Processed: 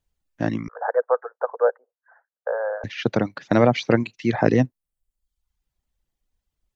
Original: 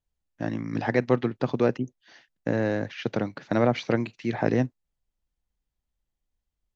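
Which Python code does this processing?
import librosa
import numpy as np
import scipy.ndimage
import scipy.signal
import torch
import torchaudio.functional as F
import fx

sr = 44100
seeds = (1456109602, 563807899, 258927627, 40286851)

y = fx.cheby1_bandpass(x, sr, low_hz=470.0, high_hz=1600.0, order=5, at=(0.68, 2.84))
y = fx.dereverb_blind(y, sr, rt60_s=0.78)
y = F.gain(torch.from_numpy(y), 6.5).numpy()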